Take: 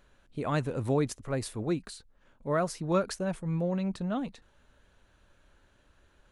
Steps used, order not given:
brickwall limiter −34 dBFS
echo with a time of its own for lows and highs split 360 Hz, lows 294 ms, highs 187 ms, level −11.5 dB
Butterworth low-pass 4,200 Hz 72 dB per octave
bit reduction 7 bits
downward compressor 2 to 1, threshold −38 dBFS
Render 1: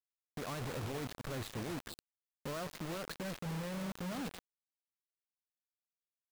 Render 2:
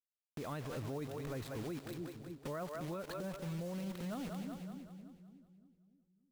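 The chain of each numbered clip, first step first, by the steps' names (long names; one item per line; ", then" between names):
Butterworth low-pass, then brickwall limiter, then downward compressor, then echo with a time of its own for lows and highs, then bit reduction
Butterworth low-pass, then bit reduction, then echo with a time of its own for lows and highs, then downward compressor, then brickwall limiter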